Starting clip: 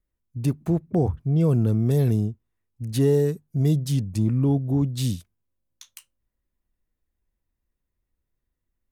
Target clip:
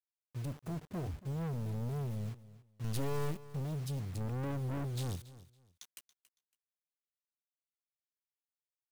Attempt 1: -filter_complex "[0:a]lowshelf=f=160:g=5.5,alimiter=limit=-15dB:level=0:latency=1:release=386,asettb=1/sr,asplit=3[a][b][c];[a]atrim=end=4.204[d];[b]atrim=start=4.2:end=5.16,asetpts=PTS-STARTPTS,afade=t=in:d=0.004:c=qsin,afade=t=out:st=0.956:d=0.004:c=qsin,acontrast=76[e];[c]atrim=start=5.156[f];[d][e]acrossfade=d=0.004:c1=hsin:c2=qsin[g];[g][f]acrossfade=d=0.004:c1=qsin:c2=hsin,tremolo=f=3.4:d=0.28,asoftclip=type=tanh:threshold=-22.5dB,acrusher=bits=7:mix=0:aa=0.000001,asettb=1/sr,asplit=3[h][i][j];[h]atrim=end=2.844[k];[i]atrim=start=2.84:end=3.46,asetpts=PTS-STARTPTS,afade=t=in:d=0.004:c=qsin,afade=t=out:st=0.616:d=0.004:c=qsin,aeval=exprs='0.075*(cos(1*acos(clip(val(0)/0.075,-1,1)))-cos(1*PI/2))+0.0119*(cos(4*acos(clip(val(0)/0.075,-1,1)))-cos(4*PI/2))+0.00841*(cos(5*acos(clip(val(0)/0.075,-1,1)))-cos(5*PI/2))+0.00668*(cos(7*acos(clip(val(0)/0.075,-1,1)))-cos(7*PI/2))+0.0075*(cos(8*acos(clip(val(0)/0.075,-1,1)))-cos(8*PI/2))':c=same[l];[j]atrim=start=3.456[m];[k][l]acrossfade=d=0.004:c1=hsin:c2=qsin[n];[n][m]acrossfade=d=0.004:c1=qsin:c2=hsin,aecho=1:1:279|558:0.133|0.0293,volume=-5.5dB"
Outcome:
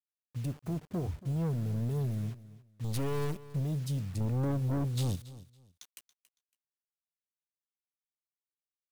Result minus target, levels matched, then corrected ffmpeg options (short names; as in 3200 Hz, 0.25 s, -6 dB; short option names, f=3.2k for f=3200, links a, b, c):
soft clip: distortion -4 dB
-filter_complex "[0:a]lowshelf=f=160:g=5.5,alimiter=limit=-15dB:level=0:latency=1:release=386,asettb=1/sr,asplit=3[a][b][c];[a]atrim=end=4.204[d];[b]atrim=start=4.2:end=5.16,asetpts=PTS-STARTPTS,afade=t=in:d=0.004:c=qsin,afade=t=out:st=0.956:d=0.004:c=qsin,acontrast=76[e];[c]atrim=start=5.156[f];[d][e]acrossfade=d=0.004:c1=hsin:c2=qsin[g];[g][f]acrossfade=d=0.004:c1=qsin:c2=hsin,tremolo=f=3.4:d=0.28,asoftclip=type=tanh:threshold=-30.5dB,acrusher=bits=7:mix=0:aa=0.000001,asettb=1/sr,asplit=3[h][i][j];[h]atrim=end=2.844[k];[i]atrim=start=2.84:end=3.46,asetpts=PTS-STARTPTS,afade=t=in:d=0.004:c=qsin,afade=t=out:st=0.616:d=0.004:c=qsin,aeval=exprs='0.075*(cos(1*acos(clip(val(0)/0.075,-1,1)))-cos(1*PI/2))+0.0119*(cos(4*acos(clip(val(0)/0.075,-1,1)))-cos(4*PI/2))+0.00841*(cos(5*acos(clip(val(0)/0.075,-1,1)))-cos(5*PI/2))+0.00668*(cos(7*acos(clip(val(0)/0.075,-1,1)))-cos(7*PI/2))+0.0075*(cos(8*acos(clip(val(0)/0.075,-1,1)))-cos(8*PI/2))':c=same[l];[j]atrim=start=3.456[m];[k][l]acrossfade=d=0.004:c1=hsin:c2=qsin[n];[n][m]acrossfade=d=0.004:c1=qsin:c2=hsin,aecho=1:1:279|558:0.133|0.0293,volume=-5.5dB"